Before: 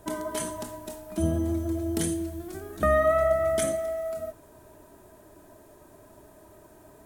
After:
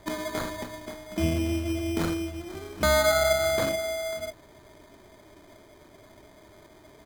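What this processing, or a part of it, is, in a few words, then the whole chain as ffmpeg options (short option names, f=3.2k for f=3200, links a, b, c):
crushed at another speed: -af "asetrate=35280,aresample=44100,acrusher=samples=20:mix=1:aa=0.000001,asetrate=55125,aresample=44100"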